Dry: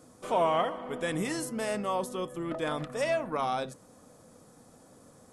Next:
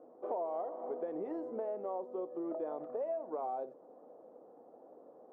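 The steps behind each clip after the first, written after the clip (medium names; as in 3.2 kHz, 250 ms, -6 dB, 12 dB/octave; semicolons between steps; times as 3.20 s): Chebyshev band-pass 360–770 Hz, order 2; compression 5:1, threshold -40 dBFS, peak gain reduction 15 dB; trim +4 dB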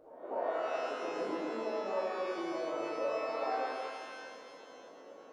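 reverse echo 249 ms -18 dB; pitch-shifted reverb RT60 2 s, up +12 st, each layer -8 dB, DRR -9 dB; trim -7 dB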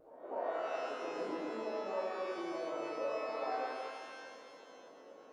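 vibrato 0.52 Hz 18 cents; trim -3 dB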